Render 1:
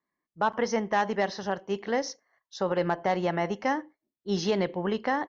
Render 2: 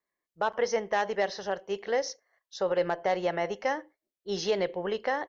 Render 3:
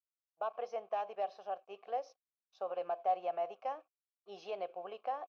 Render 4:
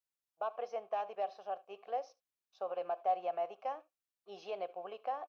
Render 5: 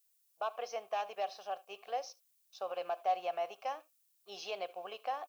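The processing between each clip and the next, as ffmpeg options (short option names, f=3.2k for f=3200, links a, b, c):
-af "equalizer=f=125:t=o:w=1:g=-7,equalizer=f=250:t=o:w=1:g=-11,equalizer=f=500:t=o:w=1:g=5,equalizer=f=1k:t=o:w=1:g=-5"
-filter_complex "[0:a]aeval=exprs='sgn(val(0))*max(abs(val(0))-0.00178,0)':c=same,asplit=3[a][b][c];[a]bandpass=f=730:t=q:w=8,volume=0dB[d];[b]bandpass=f=1.09k:t=q:w=8,volume=-6dB[e];[c]bandpass=f=2.44k:t=q:w=8,volume=-9dB[f];[d][e][f]amix=inputs=3:normalize=0"
-af "aecho=1:1:73:0.0794"
-af "crystalizer=i=8.5:c=0,volume=-2.5dB"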